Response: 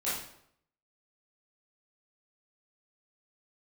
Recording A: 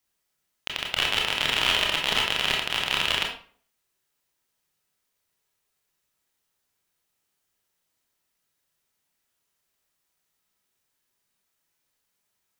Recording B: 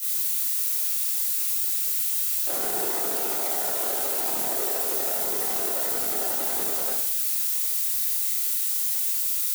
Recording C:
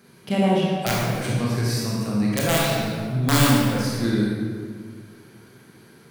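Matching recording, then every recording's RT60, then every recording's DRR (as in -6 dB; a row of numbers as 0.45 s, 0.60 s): B; 0.45 s, 0.70 s, 1.8 s; -1.0 dB, -11.0 dB, -5.0 dB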